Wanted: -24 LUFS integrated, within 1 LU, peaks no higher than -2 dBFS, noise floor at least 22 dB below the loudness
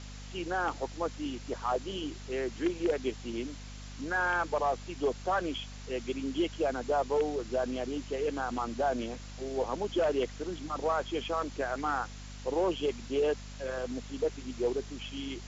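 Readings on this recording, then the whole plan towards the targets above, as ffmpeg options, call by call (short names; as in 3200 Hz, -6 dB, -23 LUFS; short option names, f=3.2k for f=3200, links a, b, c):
hum 50 Hz; harmonics up to 250 Hz; hum level -42 dBFS; noise floor -45 dBFS; noise floor target -55 dBFS; loudness -33.0 LUFS; peak -19.5 dBFS; loudness target -24.0 LUFS
-> -af "bandreject=f=50:t=h:w=6,bandreject=f=100:t=h:w=6,bandreject=f=150:t=h:w=6,bandreject=f=200:t=h:w=6,bandreject=f=250:t=h:w=6"
-af "afftdn=nr=10:nf=-45"
-af "volume=9dB"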